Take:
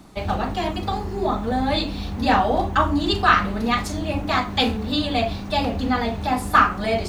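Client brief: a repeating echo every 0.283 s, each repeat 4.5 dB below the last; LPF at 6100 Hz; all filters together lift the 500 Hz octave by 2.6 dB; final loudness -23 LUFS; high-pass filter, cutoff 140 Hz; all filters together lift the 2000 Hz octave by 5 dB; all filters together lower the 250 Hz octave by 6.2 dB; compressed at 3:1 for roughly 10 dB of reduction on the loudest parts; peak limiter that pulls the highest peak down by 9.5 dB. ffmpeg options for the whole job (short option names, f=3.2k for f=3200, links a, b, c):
-af "highpass=140,lowpass=6.1k,equalizer=f=250:t=o:g=-8.5,equalizer=f=500:t=o:g=5,equalizer=f=2k:t=o:g=6.5,acompressor=threshold=-21dB:ratio=3,alimiter=limit=-17dB:level=0:latency=1,aecho=1:1:283|566|849|1132|1415|1698|1981|2264|2547:0.596|0.357|0.214|0.129|0.0772|0.0463|0.0278|0.0167|0.01,volume=2.5dB"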